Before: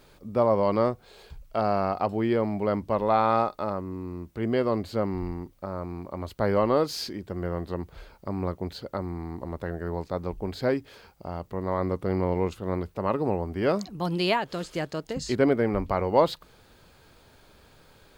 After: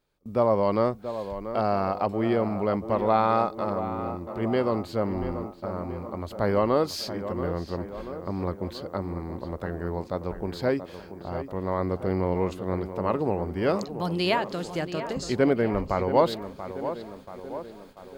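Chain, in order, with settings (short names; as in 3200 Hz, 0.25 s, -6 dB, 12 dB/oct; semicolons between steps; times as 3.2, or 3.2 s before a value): on a send: tape echo 0.683 s, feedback 65%, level -9.5 dB, low-pass 2000 Hz; on the sum: gate with hold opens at -35 dBFS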